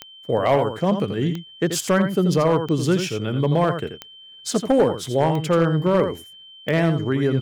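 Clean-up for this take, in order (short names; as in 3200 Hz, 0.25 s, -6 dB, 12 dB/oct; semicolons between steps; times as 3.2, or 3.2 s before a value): clip repair -10 dBFS; de-click; notch 3100 Hz, Q 30; inverse comb 84 ms -8.5 dB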